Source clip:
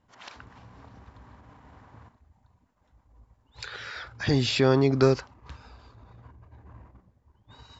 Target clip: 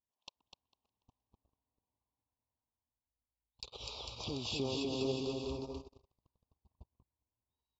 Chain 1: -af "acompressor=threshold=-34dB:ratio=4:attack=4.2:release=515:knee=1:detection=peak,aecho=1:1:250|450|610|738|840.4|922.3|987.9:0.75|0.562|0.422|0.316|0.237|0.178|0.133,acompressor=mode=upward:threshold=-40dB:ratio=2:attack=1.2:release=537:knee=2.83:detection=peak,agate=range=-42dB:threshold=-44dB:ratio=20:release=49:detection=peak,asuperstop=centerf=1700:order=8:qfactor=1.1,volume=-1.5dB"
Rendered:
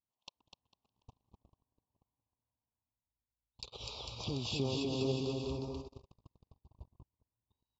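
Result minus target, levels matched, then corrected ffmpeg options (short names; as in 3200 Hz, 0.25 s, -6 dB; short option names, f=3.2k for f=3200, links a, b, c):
125 Hz band +4.5 dB
-af "acompressor=threshold=-34dB:ratio=4:attack=4.2:release=515:knee=1:detection=peak,equalizer=f=140:t=o:w=0.99:g=-6.5,aecho=1:1:250|450|610|738|840.4|922.3|987.9:0.75|0.562|0.422|0.316|0.237|0.178|0.133,acompressor=mode=upward:threshold=-40dB:ratio=2:attack=1.2:release=537:knee=2.83:detection=peak,agate=range=-42dB:threshold=-44dB:ratio=20:release=49:detection=peak,asuperstop=centerf=1700:order=8:qfactor=1.1,volume=-1.5dB"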